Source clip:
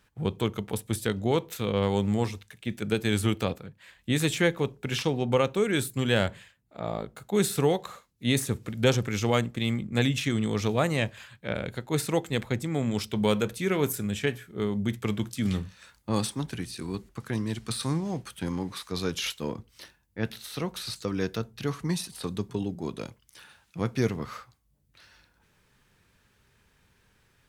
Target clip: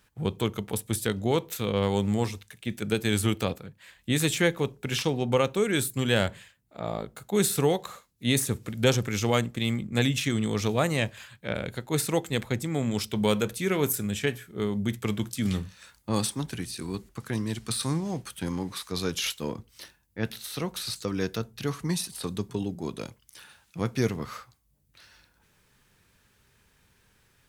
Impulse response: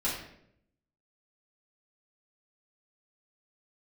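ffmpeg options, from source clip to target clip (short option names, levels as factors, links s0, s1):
-af "highshelf=f=5800:g=6"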